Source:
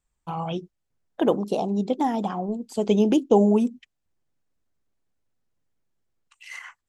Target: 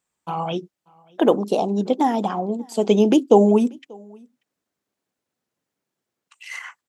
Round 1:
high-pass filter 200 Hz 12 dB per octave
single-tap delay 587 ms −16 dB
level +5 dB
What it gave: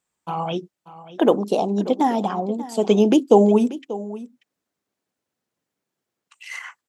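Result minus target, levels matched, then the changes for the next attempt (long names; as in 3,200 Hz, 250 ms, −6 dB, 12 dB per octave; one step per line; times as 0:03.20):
echo-to-direct +11.5 dB
change: single-tap delay 587 ms −27.5 dB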